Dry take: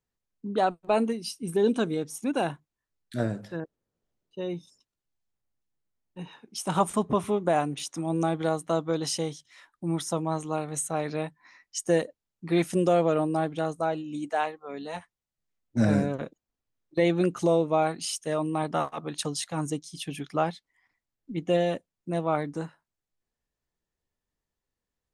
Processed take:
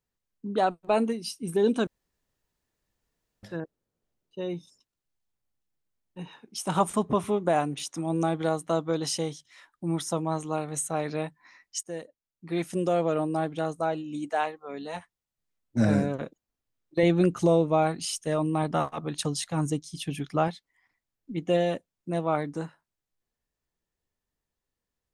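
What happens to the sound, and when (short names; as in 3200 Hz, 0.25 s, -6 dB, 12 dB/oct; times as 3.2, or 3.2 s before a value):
1.87–3.43 room tone
11.83–14.24 fade in equal-power, from -16 dB
17.03–20.48 low shelf 140 Hz +10.5 dB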